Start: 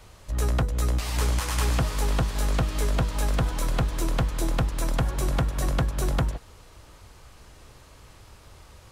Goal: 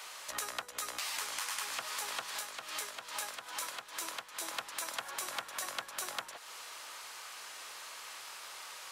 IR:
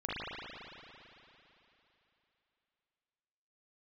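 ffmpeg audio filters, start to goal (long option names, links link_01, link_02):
-filter_complex "[0:a]highpass=1100,acompressor=threshold=-46dB:ratio=6,asettb=1/sr,asplit=3[link_01][link_02][link_03];[link_01]atrim=end=2.324[link_04];[link_02]atrim=start=2.32:end=4.4,asetpts=PTS-STARTPTS,afade=type=in:duration=0.004:curve=qsin,afade=type=out:start_time=2.076:duration=0.004:curve=qsin,tremolo=f=2.3:d=0.54[link_05];[link_03]atrim=start=4.396[link_06];[link_04][link_05]acrossfade=duration=0.004:curve1=hsin:curve2=qsin[link_07];[link_07][link_06]acrossfade=duration=0.004:curve1=qsin:curve2=hsin,volume=9.5dB"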